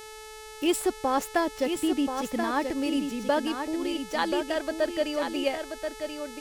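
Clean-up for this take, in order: de-hum 433.6 Hz, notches 28; inverse comb 1.032 s -6.5 dB

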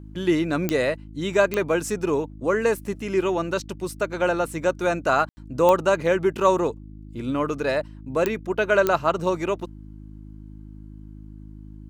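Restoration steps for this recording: de-click; de-hum 52.2 Hz, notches 6; room tone fill 5.29–5.37

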